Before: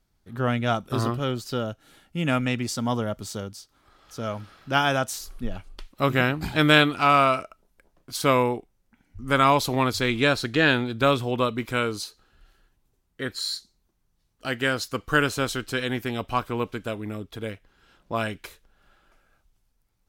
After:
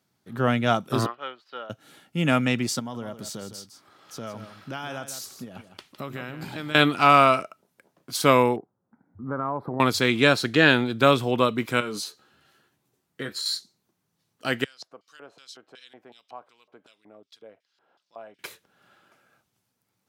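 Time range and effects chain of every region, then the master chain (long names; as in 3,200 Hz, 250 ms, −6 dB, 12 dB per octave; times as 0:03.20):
0:01.06–0:01.70: high-pass filter 880 Hz + high-frequency loss of the air 360 metres + expander for the loud parts, over −51 dBFS
0:02.79–0:06.75: downward compressor, threshold −34 dBFS + single-tap delay 158 ms −10.5 dB
0:08.56–0:09.80: inverse Chebyshev low-pass filter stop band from 2,700 Hz + downward compressor 4 to 1, threshold −29 dBFS
0:11.80–0:13.46: double-tracking delay 14 ms −6.5 dB + downward compressor 5 to 1, threshold −30 dBFS
0:14.64–0:18.39: downward compressor 2 to 1, threshold −44 dBFS + auto-filter band-pass square 2.7 Hz 680–4,900 Hz
whole clip: high-pass filter 120 Hz 24 dB per octave; boost into a limiter +3.5 dB; level −1 dB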